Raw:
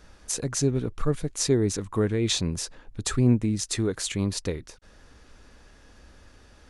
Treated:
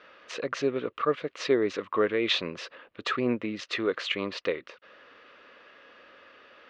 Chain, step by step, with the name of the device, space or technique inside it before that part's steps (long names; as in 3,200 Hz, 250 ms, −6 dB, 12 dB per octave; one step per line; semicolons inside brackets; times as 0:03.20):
phone earpiece (loudspeaker in its box 430–3,600 Hz, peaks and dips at 540 Hz +6 dB, 820 Hz −7 dB, 1,200 Hz +7 dB, 2,000 Hz +4 dB, 2,800 Hz +6 dB)
level +3 dB